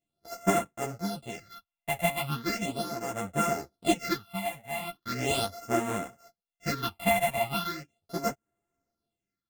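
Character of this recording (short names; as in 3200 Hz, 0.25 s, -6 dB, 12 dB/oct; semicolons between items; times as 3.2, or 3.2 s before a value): a buzz of ramps at a fixed pitch in blocks of 64 samples; phasing stages 6, 0.38 Hz, lowest notch 350–4500 Hz; tremolo triangle 0.6 Hz, depth 75%; a shimmering, thickened sound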